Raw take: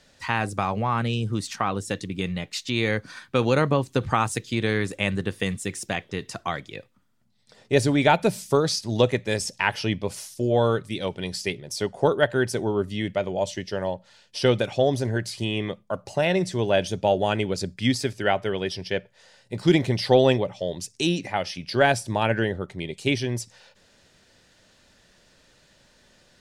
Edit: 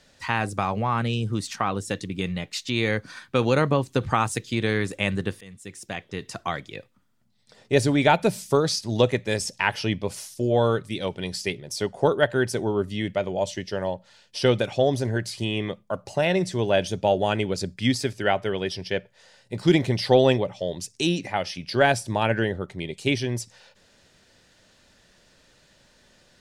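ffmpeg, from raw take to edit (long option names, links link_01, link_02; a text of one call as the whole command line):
ffmpeg -i in.wav -filter_complex "[0:a]asplit=2[link_01][link_02];[link_01]atrim=end=5.41,asetpts=PTS-STARTPTS,afade=type=out:start_time=5.406:duration=0.004:curve=hsin:silence=0.0707946[link_03];[link_02]atrim=start=5.41,asetpts=PTS-STARTPTS,afade=type=in:duration=1:silence=0.0707946[link_04];[link_03][link_04]concat=n=2:v=0:a=1" out.wav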